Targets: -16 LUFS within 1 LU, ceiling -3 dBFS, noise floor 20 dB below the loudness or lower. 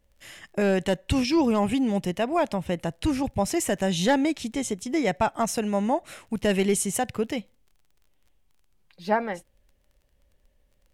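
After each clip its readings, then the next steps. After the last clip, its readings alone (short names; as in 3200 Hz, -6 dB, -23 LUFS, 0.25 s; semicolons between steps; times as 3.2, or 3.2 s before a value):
ticks 25/s; loudness -25.5 LUFS; peak -10.5 dBFS; loudness target -16.0 LUFS
-> de-click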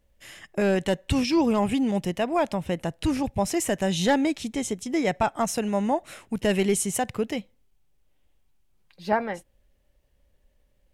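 ticks 0/s; loudness -26.0 LUFS; peak -10.5 dBFS; loudness target -16.0 LUFS
-> gain +10 dB; limiter -3 dBFS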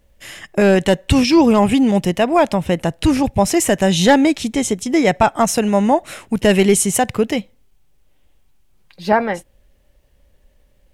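loudness -16.0 LUFS; peak -3.0 dBFS; noise floor -56 dBFS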